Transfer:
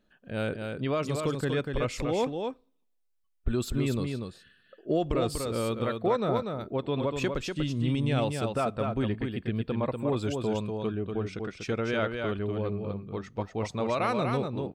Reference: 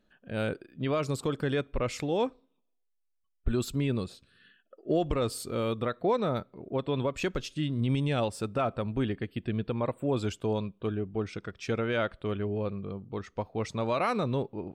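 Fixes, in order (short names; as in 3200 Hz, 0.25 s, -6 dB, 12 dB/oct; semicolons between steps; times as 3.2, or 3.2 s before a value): inverse comb 0.242 s -5 dB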